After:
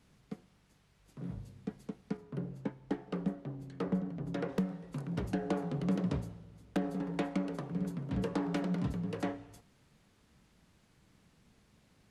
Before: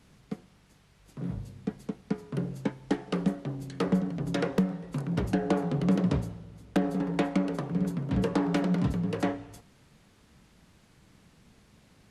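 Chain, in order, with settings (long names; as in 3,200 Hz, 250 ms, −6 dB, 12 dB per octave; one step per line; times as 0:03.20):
0:02.17–0:04.49: high-shelf EQ 2,700 Hz −10 dB
level −7 dB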